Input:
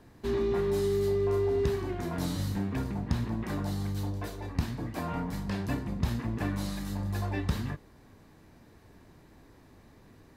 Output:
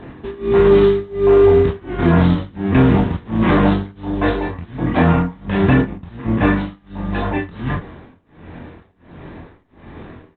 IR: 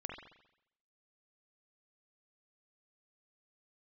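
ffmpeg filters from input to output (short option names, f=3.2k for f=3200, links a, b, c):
-filter_complex "[0:a]asettb=1/sr,asplit=3[a][b][c];[a]atrim=end=2.774[d];[b]atrim=start=2.77:end=3.8,asetpts=PTS-STARTPTS,afade=t=in:d=0.004:c=qsin,afade=t=out:st=1.026:d=0.004:c=qsin,aeval=exprs='val(0)+0.5*0.0133*sgn(val(0))':c=same[e];[c]atrim=start=3.796[f];[d][e]acrossfade=d=0.004:c1=hsin:c2=qsin[g];[g][f]acrossfade=d=0.004:c1=qsin:c2=hsin,lowshelf=f=91:g=-4,asettb=1/sr,asplit=3[h][i][j];[h]atrim=end=5.824[k];[i]atrim=start=5.82:end=7.31,asetpts=PTS-STARTPTS,afade=t=in:d=0.004:c=qsin,afade=t=out:st=1.486:d=0.004:c=qsin,agate=range=-33dB:threshold=-28dB:ratio=3:detection=peak[l];[j]atrim=start=7.306[m];[k][l]acrossfade=d=0.004:c1=hsin:c2=qsin[n];[n][m]acrossfade=d=0.004:c1=qsin:c2=hsin,acrusher=bits=8:mode=log:mix=0:aa=0.000001,tremolo=f=1.4:d=0.97,aecho=1:1:67|134:0.0794|0.0214[o];[1:a]atrim=start_sample=2205,atrim=end_sample=3969,asetrate=83790,aresample=44100[p];[o][p]afir=irnorm=-1:irlink=0,aresample=8000,aresample=44100,alimiter=level_in=32.5dB:limit=-1dB:release=50:level=0:latency=1,volume=-2.5dB" -ar 48000 -c:a libopus -b:a 20k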